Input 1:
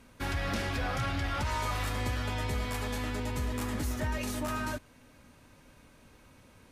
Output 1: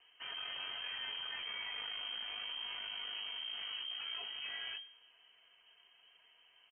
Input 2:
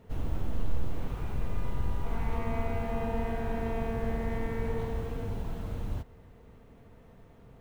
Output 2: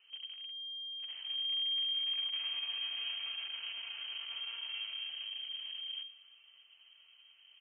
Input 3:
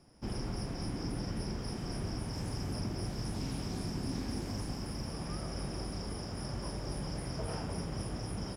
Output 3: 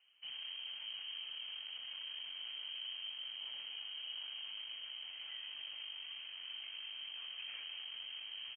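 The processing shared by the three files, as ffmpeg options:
-filter_complex "[0:a]acontrast=82,aeval=exprs='(tanh(28.2*val(0)+0.6)-tanh(0.6))/28.2':c=same,flanger=delay=2.8:depth=6.9:regen=61:speed=0.51:shape=triangular,asplit=2[s0][s1];[s1]adelay=118,lowpass=f=2200:p=1,volume=0.0794,asplit=2[s2][s3];[s3]adelay=118,lowpass=f=2200:p=1,volume=0.47,asplit=2[s4][s5];[s5]adelay=118,lowpass=f=2200:p=1,volume=0.47[s6];[s2][s4][s6]amix=inputs=3:normalize=0[s7];[s0][s7]amix=inputs=2:normalize=0,lowpass=f=2700:t=q:w=0.5098,lowpass=f=2700:t=q:w=0.6013,lowpass=f=2700:t=q:w=0.9,lowpass=f=2700:t=q:w=2.563,afreqshift=-3200,volume=0.376"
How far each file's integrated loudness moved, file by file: -7.0 LU, -1.0 LU, -5.0 LU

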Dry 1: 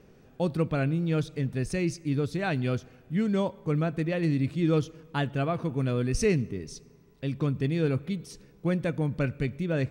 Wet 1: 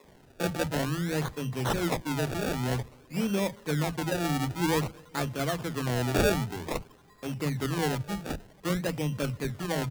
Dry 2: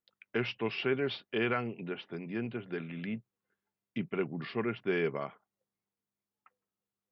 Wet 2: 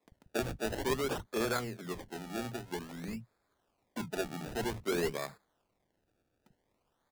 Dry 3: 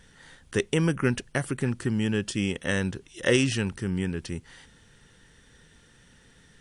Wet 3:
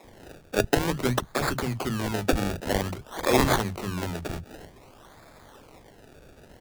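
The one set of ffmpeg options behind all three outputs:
-filter_complex "[0:a]aexciter=amount=5:drive=6.9:freq=4100,acrusher=samples=29:mix=1:aa=0.000001:lfo=1:lforange=29:lforate=0.52,acrossover=split=180[s0][s1];[s0]adelay=40[s2];[s2][s1]amix=inputs=2:normalize=0,volume=0.891"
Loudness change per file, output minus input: -1.5 LU, -1.5 LU, +0.5 LU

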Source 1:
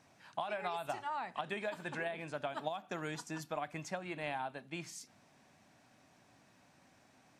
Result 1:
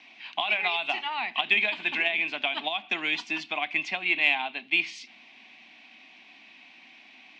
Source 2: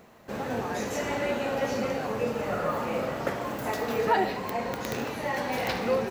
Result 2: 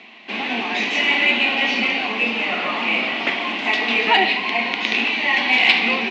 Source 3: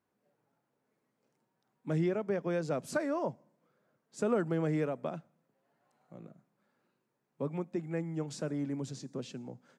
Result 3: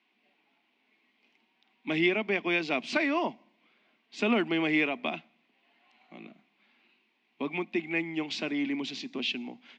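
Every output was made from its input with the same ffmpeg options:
-af "highpass=f=220:w=0.5412,highpass=f=220:w=1.3066,equalizer=f=230:t=q:w=4:g=7,equalizer=f=330:t=q:w=4:g=4,equalizer=f=520:t=q:w=4:g=-10,equalizer=f=740:t=q:w=4:g=6,equalizer=f=1100:t=q:w=4:g=9,equalizer=f=1700:t=q:w=4:g=-9,lowpass=f=2600:w=0.5412,lowpass=f=2600:w=1.3066,aexciter=amount=14.5:drive=8.3:freq=2000,volume=1.33"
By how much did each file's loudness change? +14.5 LU, +12.0 LU, +5.0 LU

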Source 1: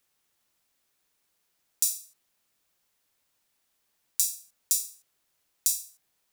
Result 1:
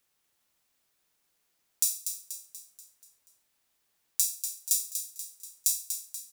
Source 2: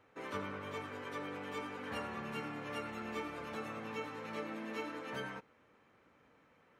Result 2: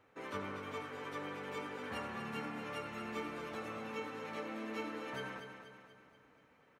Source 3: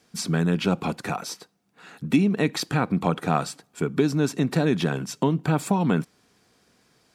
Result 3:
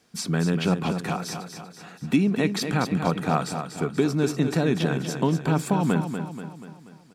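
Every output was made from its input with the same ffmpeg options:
-af "aecho=1:1:241|482|723|964|1205|1446:0.398|0.203|0.104|0.0528|0.0269|0.0137,volume=0.891"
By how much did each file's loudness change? -2.0 LU, -0.5 LU, -0.5 LU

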